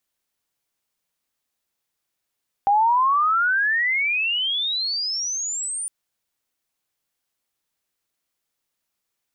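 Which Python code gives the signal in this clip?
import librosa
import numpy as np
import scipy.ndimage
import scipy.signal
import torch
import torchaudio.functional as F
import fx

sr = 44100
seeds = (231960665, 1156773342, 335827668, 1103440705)

y = fx.chirp(sr, length_s=3.21, from_hz=790.0, to_hz=9400.0, law='logarithmic', from_db=-14.0, to_db=-25.5)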